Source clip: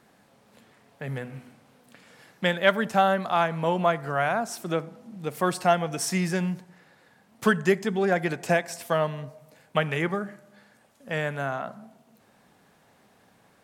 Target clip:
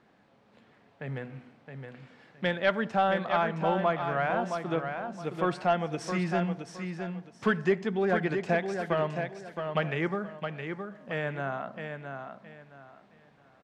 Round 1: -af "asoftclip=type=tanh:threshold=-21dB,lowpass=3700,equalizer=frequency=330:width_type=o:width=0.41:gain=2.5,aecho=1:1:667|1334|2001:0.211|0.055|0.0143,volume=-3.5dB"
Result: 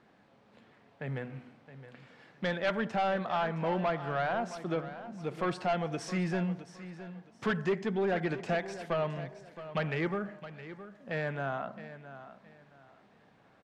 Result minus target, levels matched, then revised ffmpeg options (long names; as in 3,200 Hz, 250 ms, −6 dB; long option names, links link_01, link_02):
soft clipping: distortion +11 dB; echo-to-direct −7 dB
-af "asoftclip=type=tanh:threshold=-10.5dB,lowpass=3700,equalizer=frequency=330:width_type=o:width=0.41:gain=2.5,aecho=1:1:667|1334|2001:0.473|0.123|0.032,volume=-3.5dB"